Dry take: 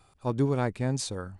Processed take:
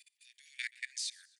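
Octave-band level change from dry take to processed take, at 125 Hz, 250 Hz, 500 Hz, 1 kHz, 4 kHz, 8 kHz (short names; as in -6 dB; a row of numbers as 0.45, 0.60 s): under -40 dB, under -40 dB, under -40 dB, under -40 dB, -0.5 dB, -3.5 dB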